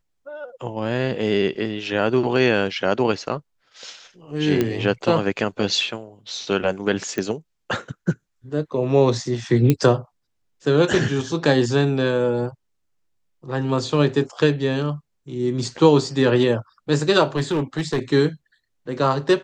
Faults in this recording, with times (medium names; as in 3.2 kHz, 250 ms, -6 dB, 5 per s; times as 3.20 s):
4.61 s: pop -8 dBFS
7.18 s: pop -13 dBFS
9.70 s: pop -5 dBFS
17.36–17.99 s: clipped -16.5 dBFS